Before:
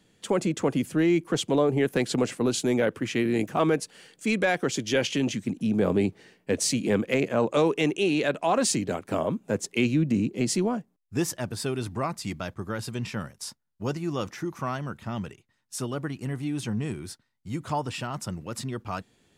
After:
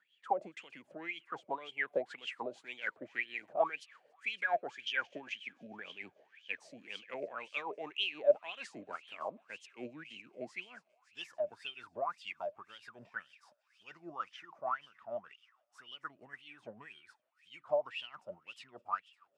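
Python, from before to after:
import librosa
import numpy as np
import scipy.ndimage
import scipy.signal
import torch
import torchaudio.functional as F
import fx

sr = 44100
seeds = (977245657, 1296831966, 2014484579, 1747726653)

y = fx.echo_wet_highpass(x, sr, ms=281, feedback_pct=81, hz=2400.0, wet_db=-18.0)
y = y * (1.0 - 0.54 / 2.0 + 0.54 / 2.0 * np.cos(2.0 * np.pi * 6.6 * (np.arange(len(y)) / sr)))
y = fx.wah_lfo(y, sr, hz=1.9, low_hz=580.0, high_hz=3200.0, q=15.0)
y = F.gain(torch.from_numpy(y), 8.5).numpy()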